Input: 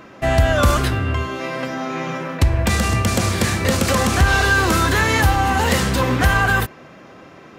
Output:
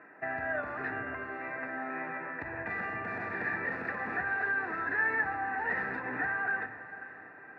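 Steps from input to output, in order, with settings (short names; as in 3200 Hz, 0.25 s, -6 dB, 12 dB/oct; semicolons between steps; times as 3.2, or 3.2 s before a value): HPF 200 Hz 6 dB/oct; bell 1000 Hz +14.5 dB 0.95 oct; limiter -9 dBFS, peak gain reduction 10.5 dB; vowel filter e; air absorption 480 m; fixed phaser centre 1300 Hz, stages 4; diffused feedback echo 0.528 s, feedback 45%, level -14 dB; on a send at -10.5 dB: reverb RT60 0.55 s, pre-delay 7 ms; on the sum: gain +7.5 dB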